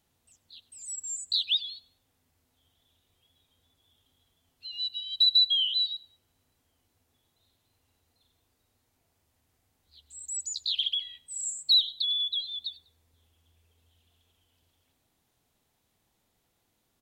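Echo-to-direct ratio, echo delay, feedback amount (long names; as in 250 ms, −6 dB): −21.5 dB, 98 ms, 35%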